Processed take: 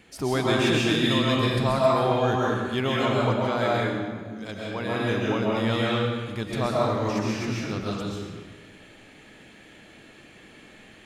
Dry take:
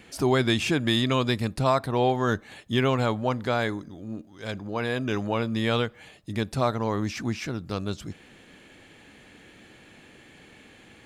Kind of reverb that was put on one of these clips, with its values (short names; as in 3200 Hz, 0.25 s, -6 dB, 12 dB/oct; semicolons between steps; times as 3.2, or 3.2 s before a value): digital reverb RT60 1.4 s, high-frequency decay 0.85×, pre-delay 90 ms, DRR -5 dB; gain -4 dB